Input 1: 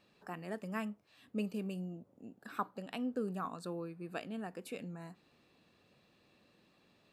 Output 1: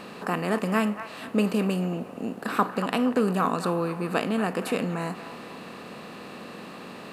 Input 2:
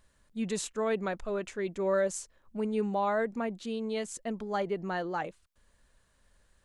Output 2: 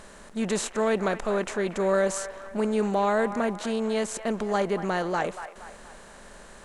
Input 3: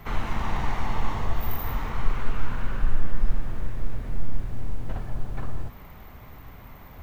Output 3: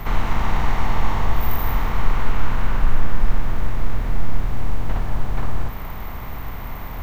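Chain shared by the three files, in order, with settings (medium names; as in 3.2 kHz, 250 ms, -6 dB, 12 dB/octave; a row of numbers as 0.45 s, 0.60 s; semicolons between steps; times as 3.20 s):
spectral levelling over time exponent 0.6; feedback echo behind a band-pass 235 ms, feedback 46%, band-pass 1.3 kHz, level -10 dB; normalise loudness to -27 LUFS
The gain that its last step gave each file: +12.0 dB, +3.0 dB, +3.0 dB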